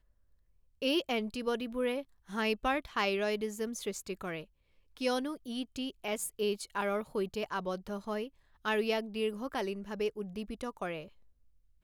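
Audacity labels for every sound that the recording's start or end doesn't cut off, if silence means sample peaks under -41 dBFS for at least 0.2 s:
0.820000	2.020000	sound
2.300000	4.430000	sound
4.970000	8.270000	sound
8.650000	11.030000	sound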